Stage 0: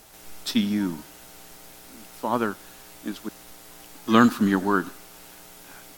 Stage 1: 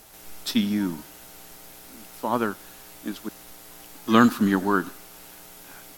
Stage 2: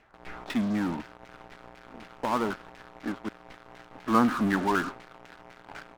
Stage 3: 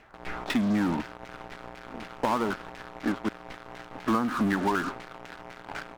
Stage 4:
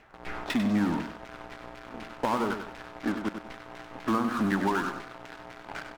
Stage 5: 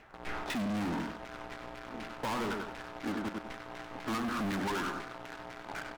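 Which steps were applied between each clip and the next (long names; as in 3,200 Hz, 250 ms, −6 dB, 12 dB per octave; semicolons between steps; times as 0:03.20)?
parametric band 12,000 Hz +5.5 dB 0.22 octaves
auto-filter low-pass saw down 4 Hz 740–2,300 Hz; in parallel at −10 dB: fuzz pedal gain 37 dB, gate −44 dBFS; on the sum: level −9 dB
downward compressor 16 to 1, threshold −28 dBFS, peak gain reduction 12.5 dB; level +6 dB
repeating echo 97 ms, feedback 29%, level −8 dB; level −1.5 dB
hard clipping −32 dBFS, distortion −6 dB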